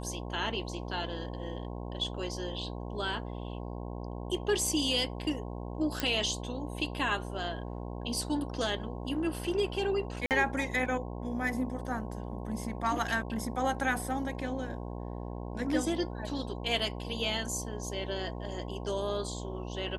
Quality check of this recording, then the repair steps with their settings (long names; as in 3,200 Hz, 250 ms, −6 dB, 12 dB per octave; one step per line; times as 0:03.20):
mains buzz 60 Hz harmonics 18 −39 dBFS
0:06.00: click
0:10.26–0:10.31: drop-out 48 ms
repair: click removal
hum removal 60 Hz, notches 18
repair the gap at 0:10.26, 48 ms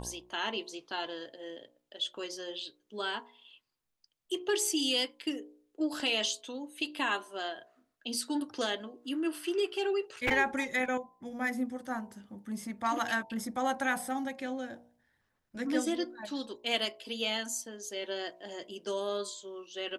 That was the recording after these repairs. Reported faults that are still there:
none of them is left